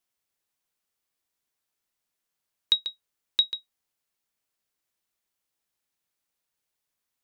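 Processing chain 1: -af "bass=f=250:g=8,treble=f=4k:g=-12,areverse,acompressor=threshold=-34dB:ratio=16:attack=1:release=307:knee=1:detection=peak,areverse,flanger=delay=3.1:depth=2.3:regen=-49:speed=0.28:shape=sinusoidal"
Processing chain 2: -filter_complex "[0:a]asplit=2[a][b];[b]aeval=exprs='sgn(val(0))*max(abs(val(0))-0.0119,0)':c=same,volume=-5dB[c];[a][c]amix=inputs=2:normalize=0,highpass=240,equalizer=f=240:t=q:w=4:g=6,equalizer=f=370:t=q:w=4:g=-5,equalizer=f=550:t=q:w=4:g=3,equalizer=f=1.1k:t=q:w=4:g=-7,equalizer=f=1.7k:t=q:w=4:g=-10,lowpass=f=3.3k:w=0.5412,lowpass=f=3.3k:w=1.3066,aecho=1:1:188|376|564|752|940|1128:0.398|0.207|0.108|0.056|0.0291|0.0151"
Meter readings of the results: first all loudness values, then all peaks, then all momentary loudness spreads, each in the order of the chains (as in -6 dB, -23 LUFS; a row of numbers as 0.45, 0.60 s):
-45.0, -30.0 LUFS; -34.0, -12.0 dBFS; 6, 15 LU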